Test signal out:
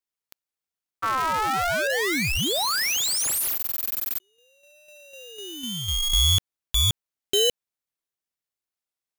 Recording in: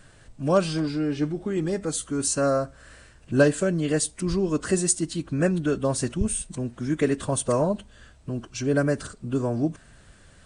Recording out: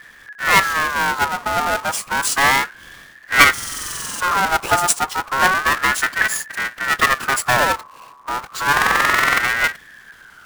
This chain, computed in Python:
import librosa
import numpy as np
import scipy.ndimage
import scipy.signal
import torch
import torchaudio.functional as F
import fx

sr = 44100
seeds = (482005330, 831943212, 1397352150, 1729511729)

y = fx.halfwave_hold(x, sr)
y = fx.buffer_glitch(y, sr, at_s=(3.55, 8.73), block=2048, repeats=13)
y = fx.ring_lfo(y, sr, carrier_hz=1400.0, swing_pct=25, hz=0.31)
y = y * 10.0 ** (5.5 / 20.0)